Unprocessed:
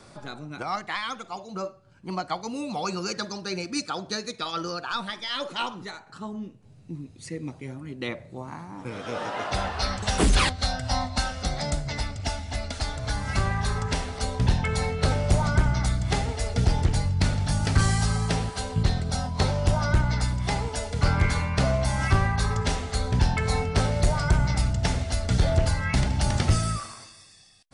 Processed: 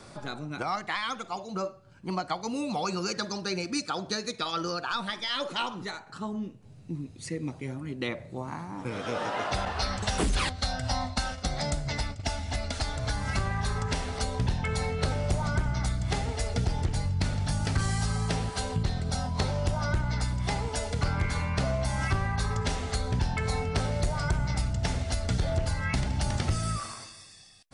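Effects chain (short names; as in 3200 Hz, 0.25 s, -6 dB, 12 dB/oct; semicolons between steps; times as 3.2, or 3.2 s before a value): 9.65–12.38 gate -32 dBFS, range -10 dB; compressor 2.5:1, threshold -29 dBFS, peak gain reduction 9.5 dB; gain +1.5 dB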